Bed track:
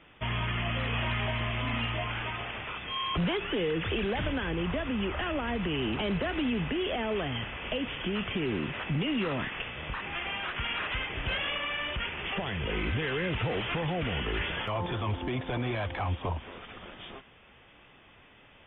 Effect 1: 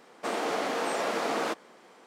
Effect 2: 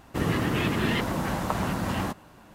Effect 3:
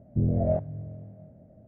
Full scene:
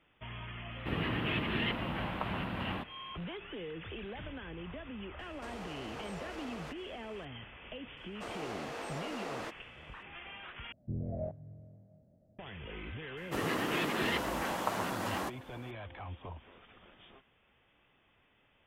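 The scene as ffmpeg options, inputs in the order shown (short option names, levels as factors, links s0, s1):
-filter_complex "[2:a]asplit=2[s0][s1];[1:a]asplit=2[s2][s3];[0:a]volume=0.224[s4];[s0]highshelf=f=4300:t=q:w=3:g=-13.5[s5];[s2]acompressor=threshold=0.01:ratio=6:attack=3.2:release=140:knee=1:detection=peak[s6];[s1]highpass=310[s7];[s4]asplit=2[s8][s9];[s8]atrim=end=10.724[s10];[3:a]atrim=end=1.67,asetpts=PTS-STARTPTS,volume=0.224[s11];[s9]atrim=start=12.386[s12];[s5]atrim=end=2.54,asetpts=PTS-STARTPTS,volume=0.335,afade=t=in:d=0.004:c=hsin,afade=t=out:st=2.536:d=0.004:c=hsin,adelay=710[s13];[s6]atrim=end=2.06,asetpts=PTS-STARTPTS,volume=0.668,afade=t=in:d=0.004:c=hsin,afade=t=out:st=2.056:d=0.004:c=hsin,adelay=5190[s14];[s3]atrim=end=2.06,asetpts=PTS-STARTPTS,volume=0.251,afade=t=in:d=0.004:c=hsin,afade=t=out:st=2.056:d=0.004:c=hsin,adelay=7970[s15];[s7]atrim=end=2.54,asetpts=PTS-STARTPTS,volume=0.631,afade=t=in:d=0.004:c=hsin,afade=t=out:st=2.536:d=0.004:c=hsin,adelay=13170[s16];[s10][s11]acrossfade=d=0.004:c1=hsin:c2=hsin[s17];[s17][s12]acrossfade=d=0.004:c1=hsin:c2=hsin[s18];[s18][s13][s14][s15][s16]amix=inputs=5:normalize=0"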